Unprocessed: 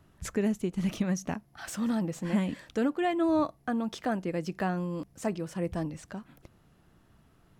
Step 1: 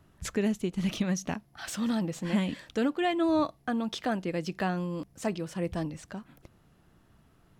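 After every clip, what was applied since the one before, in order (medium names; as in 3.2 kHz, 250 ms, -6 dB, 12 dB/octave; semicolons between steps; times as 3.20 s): dynamic bell 3.6 kHz, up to +7 dB, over -55 dBFS, Q 1.1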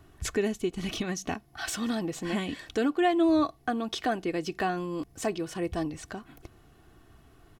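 in parallel at -0.5 dB: compression, threshold -39 dBFS, peak gain reduction 16 dB; on the sum: comb 2.7 ms, depth 53%; trim -1 dB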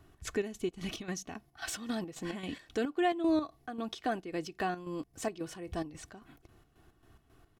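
square tremolo 3.7 Hz, depth 60%, duty 55%; trim -4.5 dB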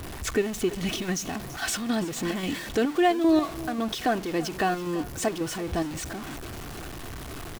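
jump at every zero crossing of -39.5 dBFS; delay 334 ms -17 dB; trim +7 dB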